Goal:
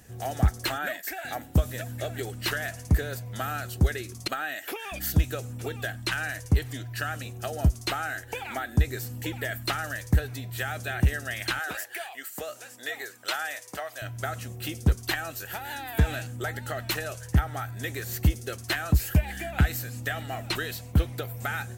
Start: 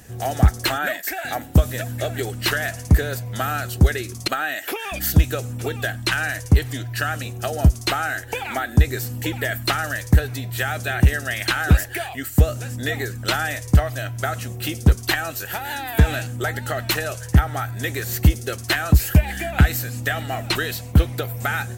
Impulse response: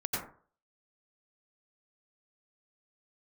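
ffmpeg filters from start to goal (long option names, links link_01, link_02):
-filter_complex "[0:a]asettb=1/sr,asplit=3[link_01][link_02][link_03];[link_01]atrim=end=11.594[link_04];[link_02]atrim=start=11.59:end=14.02,asetpts=PTS-STARTPTS,afade=type=in:duration=0.004:curve=qsin,afade=type=out:start_time=2.426:duration=0.004:curve=qsin,highpass=550[link_05];[link_03]atrim=start=14.016[link_06];[link_04][link_05]acrossfade=duration=0.004:curve1=hsin:curve2=qsin[link_07];[link_07][link_06]acrossfade=duration=0.004:curve1=qsin:curve2=hsin,volume=-7.5dB"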